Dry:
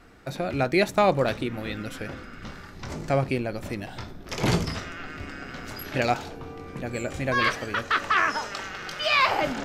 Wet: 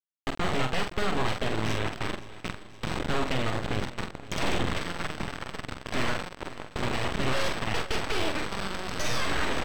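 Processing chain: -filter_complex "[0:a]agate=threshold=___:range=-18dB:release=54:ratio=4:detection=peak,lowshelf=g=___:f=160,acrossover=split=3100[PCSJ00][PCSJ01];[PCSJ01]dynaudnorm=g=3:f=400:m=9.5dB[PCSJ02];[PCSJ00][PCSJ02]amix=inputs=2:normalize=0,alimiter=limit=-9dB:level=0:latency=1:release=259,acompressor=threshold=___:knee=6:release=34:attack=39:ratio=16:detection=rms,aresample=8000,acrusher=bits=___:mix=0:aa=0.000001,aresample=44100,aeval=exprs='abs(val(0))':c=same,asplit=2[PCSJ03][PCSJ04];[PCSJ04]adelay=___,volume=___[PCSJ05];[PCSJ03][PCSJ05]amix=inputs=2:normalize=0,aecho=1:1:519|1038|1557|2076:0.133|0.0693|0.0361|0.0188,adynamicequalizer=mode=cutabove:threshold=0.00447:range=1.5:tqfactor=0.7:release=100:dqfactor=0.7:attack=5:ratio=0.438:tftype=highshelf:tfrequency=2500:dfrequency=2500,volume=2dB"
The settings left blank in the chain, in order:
-40dB, 3.5, -30dB, 4, 46, -6.5dB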